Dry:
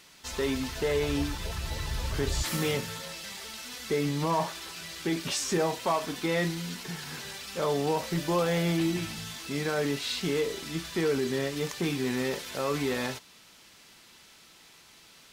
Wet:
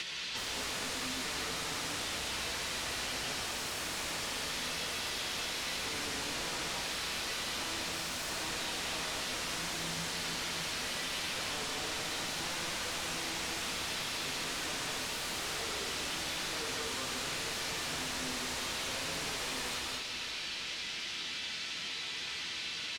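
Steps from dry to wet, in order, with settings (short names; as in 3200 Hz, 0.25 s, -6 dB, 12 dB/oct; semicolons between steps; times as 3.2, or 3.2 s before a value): weighting filter D; overloaded stage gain 28.5 dB; plain phase-vocoder stretch 1.5×; wavefolder -37.5 dBFS; air absorption 51 m; feedback echo 0.331 s, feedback 54%, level -13.5 dB; non-linear reverb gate 0.25 s rising, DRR 0 dB; three-band squash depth 70%; gain +4 dB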